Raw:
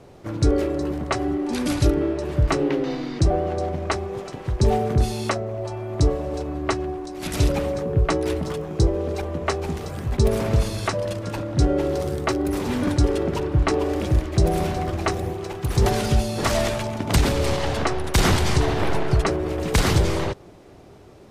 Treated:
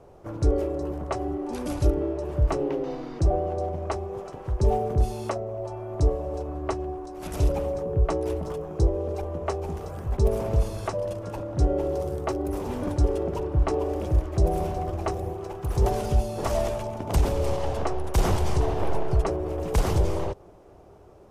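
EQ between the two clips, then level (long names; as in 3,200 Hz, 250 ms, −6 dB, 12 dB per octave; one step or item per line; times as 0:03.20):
octave-band graphic EQ 125/250/2,000/4,000/8,000 Hz −6/−8/−9/−11/−5 dB
dynamic equaliser 1,400 Hz, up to −5 dB, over −43 dBFS, Q 1.6
high-shelf EQ 11,000 Hz −8.5 dB
0.0 dB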